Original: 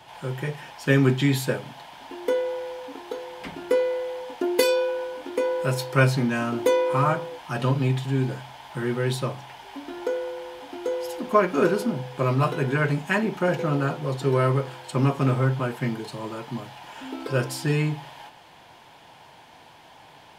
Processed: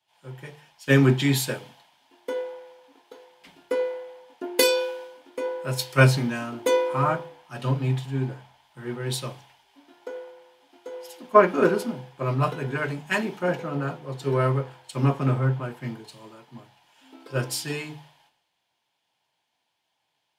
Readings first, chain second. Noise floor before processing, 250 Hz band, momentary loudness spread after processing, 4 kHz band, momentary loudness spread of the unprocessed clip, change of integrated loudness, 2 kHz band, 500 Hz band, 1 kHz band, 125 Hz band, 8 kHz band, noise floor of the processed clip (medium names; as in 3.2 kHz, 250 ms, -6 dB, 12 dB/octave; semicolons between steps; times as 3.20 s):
-50 dBFS, -2.0 dB, 21 LU, +2.0 dB, 16 LU, 0.0 dB, -0.5 dB, -1.5 dB, -0.5 dB, -1.0 dB, +3.5 dB, -77 dBFS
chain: hum notches 50/100/150/200/250/300/350/400/450/500 Hz; three bands expanded up and down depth 100%; trim -3.5 dB